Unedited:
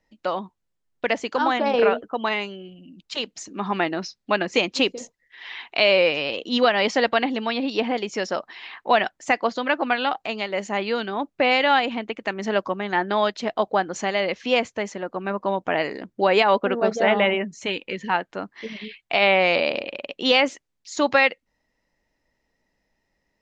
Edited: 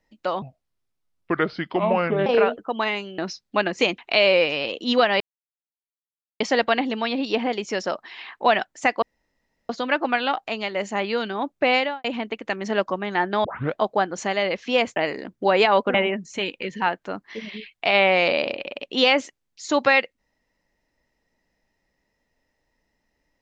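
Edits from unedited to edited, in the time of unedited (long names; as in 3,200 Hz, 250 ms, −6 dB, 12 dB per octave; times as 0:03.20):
0:00.42–0:01.71: play speed 70%
0:02.63–0:03.93: remove
0:04.73–0:05.63: remove
0:06.85: splice in silence 1.20 s
0:09.47: splice in room tone 0.67 s
0:11.52–0:11.82: fade out and dull
0:13.22: tape start 0.33 s
0:14.74–0:15.73: remove
0:16.71–0:17.22: remove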